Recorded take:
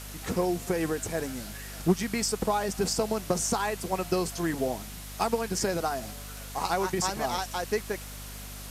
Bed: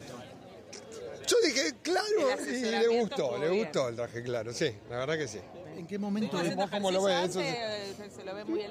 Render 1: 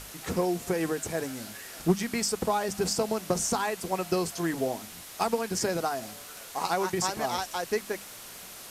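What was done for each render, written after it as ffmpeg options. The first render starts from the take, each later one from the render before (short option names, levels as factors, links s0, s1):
-af "bandreject=f=50:t=h:w=6,bandreject=f=100:t=h:w=6,bandreject=f=150:t=h:w=6,bandreject=f=200:t=h:w=6,bandreject=f=250:t=h:w=6"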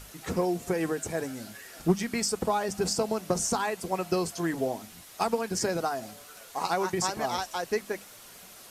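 -af "afftdn=nr=6:nf=-45"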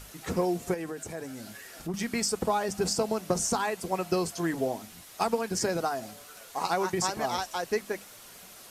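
-filter_complex "[0:a]asettb=1/sr,asplit=3[s0][s1][s2];[s0]atrim=end=0.744[s3];[s1]atrim=start=0.74:end=1.94,asetpts=PTS-STARTPTS,afade=t=in:d=0.004:c=qsin,afade=t=out:st=1.196:d=0.004:c=qsin,acompressor=threshold=0.0126:ratio=2:attack=3.2:release=140:knee=1:detection=peak[s4];[s2]atrim=start=1.936[s5];[s3][s4]acrossfade=d=0.004:c1=hsin:c2=qsin[s6];[s6][s5]acrossfade=d=0.004:c1=qsin:c2=hsin"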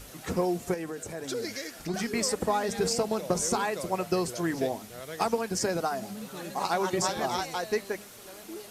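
-filter_complex "[1:a]volume=0.355[s0];[0:a][s0]amix=inputs=2:normalize=0"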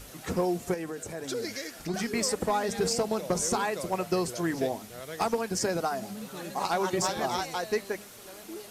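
-af "asoftclip=type=hard:threshold=0.112"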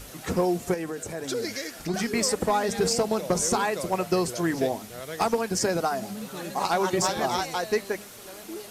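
-af "volume=1.5"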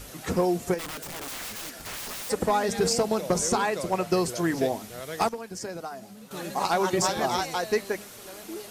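-filter_complex "[0:a]asplit=3[s0][s1][s2];[s0]afade=t=out:st=0.78:d=0.02[s3];[s1]aeval=exprs='(mod(37.6*val(0)+1,2)-1)/37.6':c=same,afade=t=in:st=0.78:d=0.02,afade=t=out:st=2.29:d=0.02[s4];[s2]afade=t=in:st=2.29:d=0.02[s5];[s3][s4][s5]amix=inputs=3:normalize=0,asettb=1/sr,asplit=3[s6][s7][s8];[s6]atrim=end=3.404[s9];[s7]atrim=start=3.4:end=4.12,asetpts=PTS-STARTPTS,afade=t=in:d=0.004:c=qsin,afade=t=out:st=0.716:d=0.004:c=qsin,highshelf=f=11000:g=-6.5[s10];[s8]atrim=start=4.116[s11];[s9][s10]acrossfade=d=0.004:c1=hsin:c2=qsin[s12];[s12][s11]acrossfade=d=0.004:c1=qsin:c2=hsin,asplit=3[s13][s14][s15];[s13]atrim=end=5.292[s16];[s14]atrim=start=5.288:end=6.312,asetpts=PTS-STARTPTS,volume=0.299[s17];[s15]atrim=start=6.308[s18];[s16][s17]acrossfade=d=0.004:c1=hsin:c2=hsin[s19];[s19][s18]acrossfade=d=0.004:c1=hsin:c2=hsin"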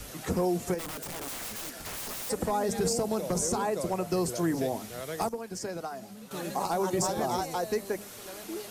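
-filter_complex "[0:a]acrossover=split=160|1000|6500[s0][s1][s2][s3];[s1]alimiter=limit=0.0794:level=0:latency=1[s4];[s2]acompressor=threshold=0.00794:ratio=6[s5];[s0][s4][s5][s3]amix=inputs=4:normalize=0"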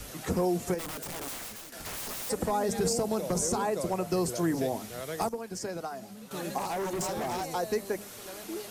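-filter_complex "[0:a]asettb=1/sr,asplit=3[s0][s1][s2];[s0]atrim=end=6.584[s3];[s1]atrim=start=6.58:end=7.5,asetpts=PTS-STARTPTS,afade=t=in:d=0.004:c=qsin,afade=t=out:st=0.916:d=0.004:c=qsin,asoftclip=type=hard:threshold=0.0335[s4];[s2]atrim=start=7.496[s5];[s3][s4]acrossfade=d=0.004:c1=hsin:c2=qsin[s6];[s6][s5]acrossfade=d=0.004:c1=qsin:c2=hsin,asplit=2[s7][s8];[s7]atrim=end=1.72,asetpts=PTS-STARTPTS,afade=t=out:st=1.28:d=0.44:silence=0.316228[s9];[s8]atrim=start=1.72,asetpts=PTS-STARTPTS,afade=t=in:d=0.004:c=hsin:silence=0.316228[s10];[s9][s10]concat=n=2:v=0:a=1"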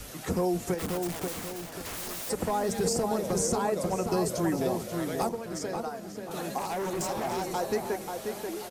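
-filter_complex "[0:a]asplit=2[s0][s1];[s1]adelay=536,lowpass=f=2600:p=1,volume=0.562,asplit=2[s2][s3];[s3]adelay=536,lowpass=f=2600:p=1,volume=0.4,asplit=2[s4][s5];[s5]adelay=536,lowpass=f=2600:p=1,volume=0.4,asplit=2[s6][s7];[s7]adelay=536,lowpass=f=2600:p=1,volume=0.4,asplit=2[s8][s9];[s9]adelay=536,lowpass=f=2600:p=1,volume=0.4[s10];[s0][s2][s4][s6][s8][s10]amix=inputs=6:normalize=0"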